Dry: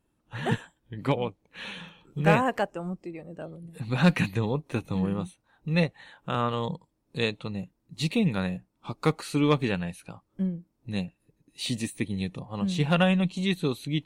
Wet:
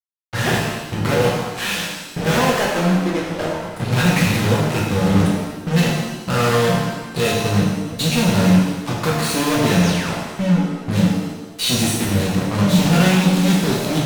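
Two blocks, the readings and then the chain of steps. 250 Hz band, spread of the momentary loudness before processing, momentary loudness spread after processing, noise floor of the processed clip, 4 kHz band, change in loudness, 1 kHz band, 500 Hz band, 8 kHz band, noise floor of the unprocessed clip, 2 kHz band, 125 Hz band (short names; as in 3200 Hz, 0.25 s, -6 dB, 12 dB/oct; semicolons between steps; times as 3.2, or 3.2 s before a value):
+10.5 dB, 18 LU, 8 LU, -33 dBFS, +13.0 dB, +10.0 dB, +9.5 dB, +9.5 dB, +19.5 dB, -74 dBFS, +10.5 dB, +11.0 dB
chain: fuzz box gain 41 dB, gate -40 dBFS; painted sound fall, 9.83–10.16, 550–7200 Hz -27 dBFS; shimmer reverb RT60 1.1 s, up +7 st, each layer -8 dB, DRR -3.5 dB; gain -6.5 dB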